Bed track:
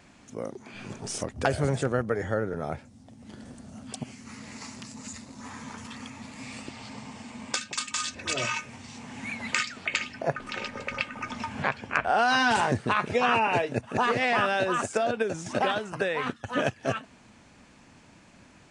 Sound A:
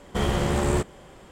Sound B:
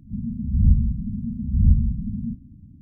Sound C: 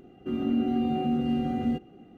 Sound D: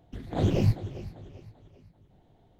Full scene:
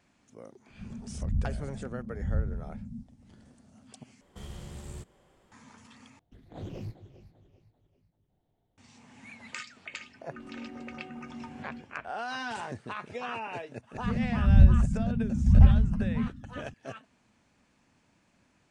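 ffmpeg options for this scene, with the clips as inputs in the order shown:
ffmpeg -i bed.wav -i cue0.wav -i cue1.wav -i cue2.wav -i cue3.wav -filter_complex "[2:a]asplit=2[link_01][link_02];[0:a]volume=-13dB[link_03];[1:a]acrossover=split=190|3000[link_04][link_05][link_06];[link_05]acompressor=threshold=-34dB:ratio=6:attack=3.2:release=140:knee=2.83:detection=peak[link_07];[link_04][link_07][link_06]amix=inputs=3:normalize=0[link_08];[4:a]asoftclip=type=hard:threshold=-18.5dB[link_09];[3:a]acrossover=split=3100[link_10][link_11];[link_11]acompressor=threshold=-57dB:ratio=4:attack=1:release=60[link_12];[link_10][link_12]amix=inputs=2:normalize=0[link_13];[link_03]asplit=3[link_14][link_15][link_16];[link_14]atrim=end=4.214[link_17];[link_08]atrim=end=1.31,asetpts=PTS-STARTPTS,volume=-16dB[link_18];[link_15]atrim=start=5.516:end=6.194[link_19];[link_09]atrim=end=2.59,asetpts=PTS-STARTPTS,volume=-15dB[link_20];[link_16]atrim=start=8.776[link_21];[link_01]atrim=end=2.81,asetpts=PTS-STARTPTS,volume=-13dB,afade=type=in:duration=0.004:curve=hsin,afade=type=out:start_time=2.806:duration=0.004:curve=hsin,adelay=680[link_22];[link_13]atrim=end=2.17,asetpts=PTS-STARTPTS,volume=-17.5dB,afade=type=in:duration=0.004:curve=hsin,afade=type=out:start_time=2.166:duration=0.004:curve=hsin,adelay=10050[link_23];[link_02]atrim=end=2.81,asetpts=PTS-STARTPTS,volume=-0.5dB,afade=type=in:duration=0.004:curve=hsin,afade=type=out:start_time=2.806:duration=0.004:curve=hsin,adelay=13930[link_24];[link_17][link_18]acrossfade=duration=0.004:curve1=hsin:curve2=hsin[link_25];[link_25][link_19]acrossfade=duration=0.004:curve1=hsin:curve2=hsin[link_26];[link_26][link_20]acrossfade=duration=0.004:curve1=hsin:curve2=hsin[link_27];[link_27][link_21]acrossfade=duration=0.004:curve1=hsin:curve2=hsin[link_28];[link_28][link_22][link_23][link_24]amix=inputs=4:normalize=0" out.wav

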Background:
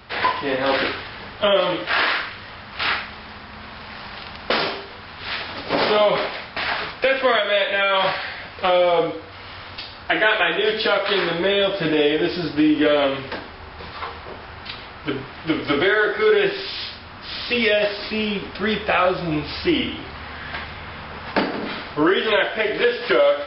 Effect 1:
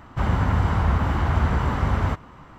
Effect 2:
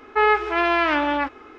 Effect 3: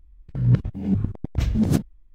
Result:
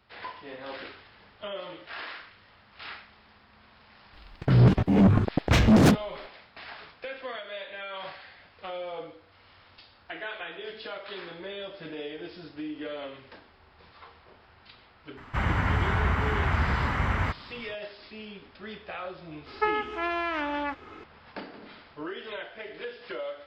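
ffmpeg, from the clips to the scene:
ffmpeg -i bed.wav -i cue0.wav -i cue1.wav -i cue2.wav -filter_complex "[0:a]volume=-19.5dB[link_01];[3:a]asplit=2[link_02][link_03];[link_03]highpass=frequency=720:poles=1,volume=31dB,asoftclip=type=tanh:threshold=-6.5dB[link_04];[link_02][link_04]amix=inputs=2:normalize=0,lowpass=frequency=2300:poles=1,volume=-6dB[link_05];[1:a]equalizer=frequency=2100:width=1:gain=11[link_06];[2:a]acompressor=threshold=-25dB:ratio=5:attack=43:release=854:knee=1:detection=peak[link_07];[link_05]atrim=end=2.14,asetpts=PTS-STARTPTS,volume=-2.5dB,afade=type=in:duration=0.004:curve=hsin,afade=type=out:start_time=2.136:duration=0.004:curve=hsin,adelay=182133S[link_08];[link_06]atrim=end=2.58,asetpts=PTS-STARTPTS,volume=-6dB,afade=type=in:duration=0.004:curve=hsin,afade=type=out:start_time=2.576:duration=0.004:curve=hsin,adelay=15170[link_09];[link_07]atrim=end=1.58,asetpts=PTS-STARTPTS,volume=-1.5dB,afade=type=in:duration=0.004:curve=hsin,afade=type=out:start_time=1.576:duration=0.004:curve=hsin,adelay=19460[link_10];[link_01][link_08][link_09][link_10]amix=inputs=4:normalize=0" out.wav

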